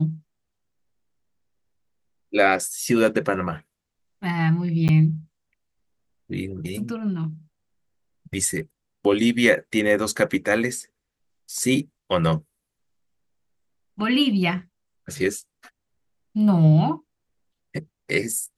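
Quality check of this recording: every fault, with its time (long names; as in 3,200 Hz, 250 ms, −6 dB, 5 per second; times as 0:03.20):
0:04.88–0:04.89: drop-out 9.5 ms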